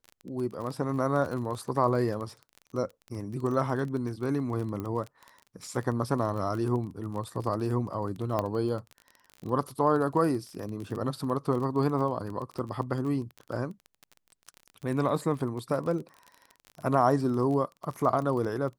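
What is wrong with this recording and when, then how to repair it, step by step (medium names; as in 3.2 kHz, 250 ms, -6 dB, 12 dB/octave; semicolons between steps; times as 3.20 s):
crackle 25 per s -34 dBFS
4.80 s: pop -23 dBFS
8.39 s: pop -16 dBFS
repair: de-click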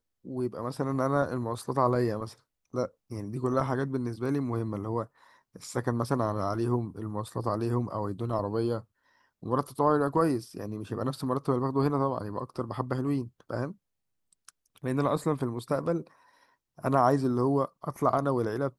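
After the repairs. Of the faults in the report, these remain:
nothing left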